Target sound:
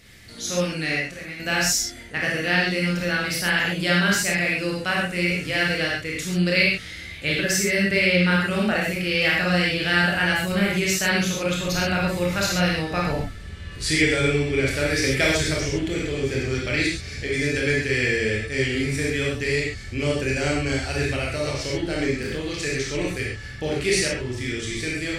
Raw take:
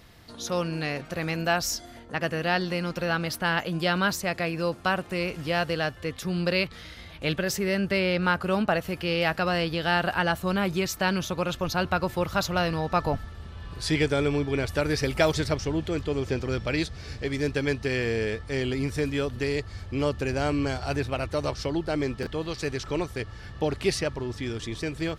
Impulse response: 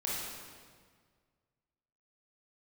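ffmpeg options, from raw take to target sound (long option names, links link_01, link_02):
-filter_complex "[0:a]equalizer=frequency=1000:width_type=o:width=1:gain=-10,equalizer=frequency=2000:width_type=o:width=1:gain=9,equalizer=frequency=8000:width_type=o:width=1:gain=9,asettb=1/sr,asplit=3[link_01][link_02][link_03];[link_01]atrim=end=0.964[link_04];[link_02]atrim=start=0.96:end=1.4,asetpts=PTS-STARTPTS,afade=type=in:duration=0.004:curve=qsin,afade=type=out:start_time=0.436:duration=0.004:curve=qsin,acompressor=threshold=-39dB:ratio=2.5[link_05];[link_03]atrim=start=1.396[link_06];[link_04][link_05]acrossfade=duration=0.004:curve1=hsin:curve2=qsin[link_07];[link_07][link_06]acrossfade=duration=0.004:curve1=qsin:curve2=hsin[link_08];[1:a]atrim=start_sample=2205,afade=type=out:start_time=0.19:duration=0.01,atrim=end_sample=8820[link_09];[link_08][link_09]afir=irnorm=-1:irlink=0"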